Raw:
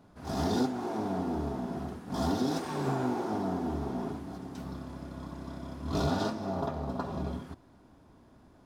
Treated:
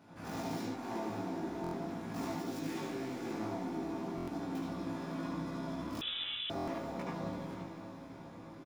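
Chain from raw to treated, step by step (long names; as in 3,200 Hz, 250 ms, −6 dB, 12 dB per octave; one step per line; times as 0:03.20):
stylus tracing distortion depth 0.49 ms
0:02.49–0:03.32: parametric band 930 Hz −10 dB 0.97 octaves
0:04.76–0:05.25: high-pass filter 170 Hz
downward compressor 12 to 1, threshold −41 dBFS, peak gain reduction 17.5 dB
double-tracking delay 18 ms −2 dB
feedback delay with all-pass diffusion 595 ms, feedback 55%, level −11 dB
convolution reverb RT60 0.40 s, pre-delay 71 ms, DRR −2 dB
0:06.01–0:06.50: voice inversion scrambler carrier 3,700 Hz
buffer that repeats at 0:01.62/0:04.16/0:06.56, samples 1,024, times 4
level −1.5 dB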